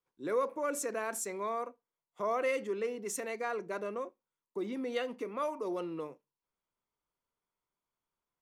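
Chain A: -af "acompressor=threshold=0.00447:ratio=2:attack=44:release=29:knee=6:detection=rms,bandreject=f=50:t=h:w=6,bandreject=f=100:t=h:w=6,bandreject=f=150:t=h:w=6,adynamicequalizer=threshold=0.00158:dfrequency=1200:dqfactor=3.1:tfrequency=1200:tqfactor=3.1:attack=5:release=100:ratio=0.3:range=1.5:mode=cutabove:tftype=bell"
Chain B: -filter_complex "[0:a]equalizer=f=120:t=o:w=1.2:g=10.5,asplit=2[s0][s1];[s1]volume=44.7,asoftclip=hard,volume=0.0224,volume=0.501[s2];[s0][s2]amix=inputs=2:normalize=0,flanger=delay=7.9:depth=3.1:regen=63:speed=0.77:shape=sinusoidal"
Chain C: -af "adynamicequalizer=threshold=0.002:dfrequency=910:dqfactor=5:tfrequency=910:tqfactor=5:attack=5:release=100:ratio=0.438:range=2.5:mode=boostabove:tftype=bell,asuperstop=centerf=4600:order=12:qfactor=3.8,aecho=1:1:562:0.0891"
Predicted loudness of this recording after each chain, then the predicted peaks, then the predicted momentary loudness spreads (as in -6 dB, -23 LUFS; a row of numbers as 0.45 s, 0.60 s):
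-42.0 LUFS, -37.0 LUFS, -36.0 LUFS; -28.5 dBFS, -21.5 dBFS, -20.0 dBFS; 6 LU, 6 LU, 11 LU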